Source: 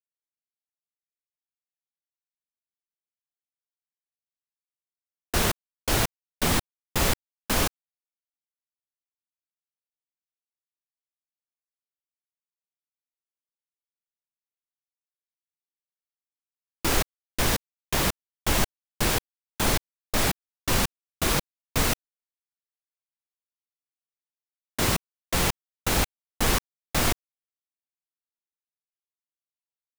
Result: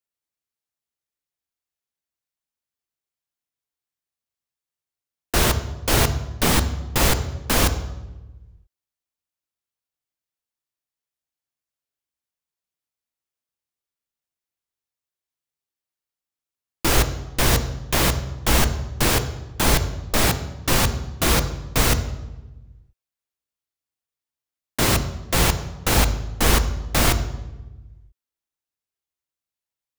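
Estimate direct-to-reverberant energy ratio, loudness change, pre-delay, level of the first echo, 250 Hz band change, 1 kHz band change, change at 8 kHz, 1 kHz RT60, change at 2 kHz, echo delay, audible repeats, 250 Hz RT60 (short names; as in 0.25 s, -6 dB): 9.0 dB, +5.5 dB, 3 ms, none, +5.5 dB, +5.0 dB, +5.0 dB, 1.0 s, +5.0 dB, none, none, 1.5 s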